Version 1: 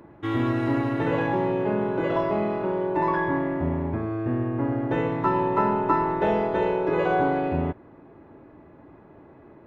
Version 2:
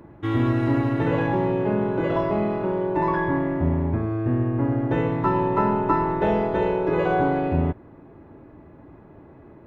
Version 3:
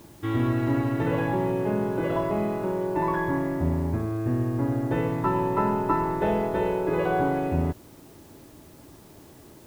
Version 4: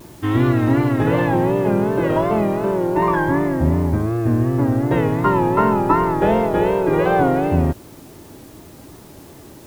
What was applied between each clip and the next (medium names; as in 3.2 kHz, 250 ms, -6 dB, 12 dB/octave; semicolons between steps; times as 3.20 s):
bass shelf 180 Hz +8 dB
added noise white -54 dBFS; trim -3 dB
vibrato 2.7 Hz 96 cents; trim +8 dB